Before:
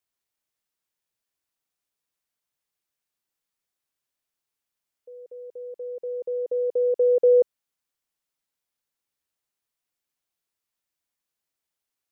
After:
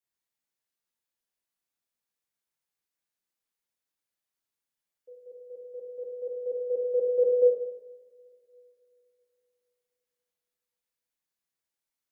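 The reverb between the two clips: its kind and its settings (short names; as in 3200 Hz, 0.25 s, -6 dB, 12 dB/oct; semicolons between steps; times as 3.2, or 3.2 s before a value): two-slope reverb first 0.96 s, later 3.4 s, from -25 dB, DRR -5 dB; gain -10 dB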